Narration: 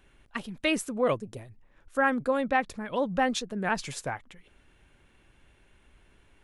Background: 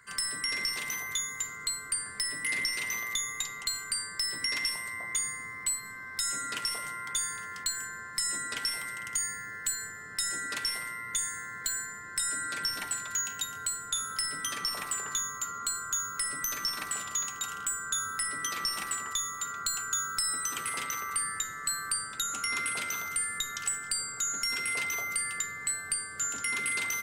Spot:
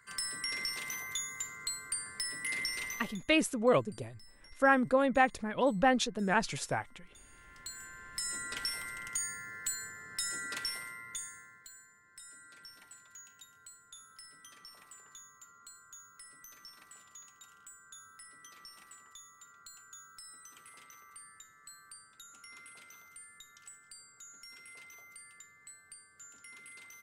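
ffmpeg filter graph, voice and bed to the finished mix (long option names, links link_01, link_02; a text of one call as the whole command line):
ffmpeg -i stem1.wav -i stem2.wav -filter_complex "[0:a]adelay=2650,volume=-0.5dB[link_01];[1:a]volume=19dB,afade=type=out:start_time=2.83:duration=0.37:silence=0.0668344,afade=type=in:start_time=7.25:duration=1.25:silence=0.0630957,afade=type=out:start_time=10.55:duration=1.13:silence=0.149624[link_02];[link_01][link_02]amix=inputs=2:normalize=0" out.wav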